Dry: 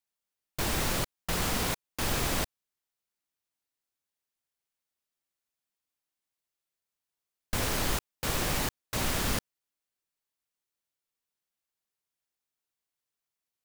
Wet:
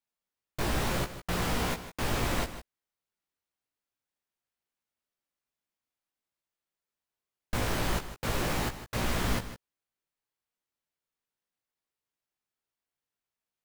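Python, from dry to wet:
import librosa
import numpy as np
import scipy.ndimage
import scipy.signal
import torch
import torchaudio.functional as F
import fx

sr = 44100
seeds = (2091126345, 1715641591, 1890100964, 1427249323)

y = fx.high_shelf(x, sr, hz=3600.0, db=-8.5)
y = fx.doubler(y, sr, ms=17.0, db=-5)
y = y + 10.0 ** (-12.5 / 20.0) * np.pad(y, (int(156 * sr / 1000.0), 0))[:len(y)]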